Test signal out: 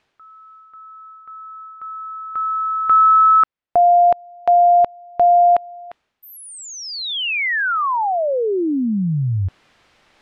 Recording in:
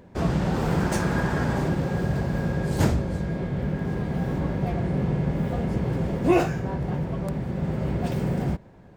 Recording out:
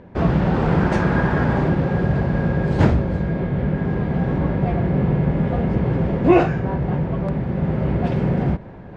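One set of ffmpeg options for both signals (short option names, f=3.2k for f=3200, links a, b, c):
-af "lowpass=2.8k,areverse,acompressor=mode=upward:threshold=-36dB:ratio=2.5,areverse,volume=6dB"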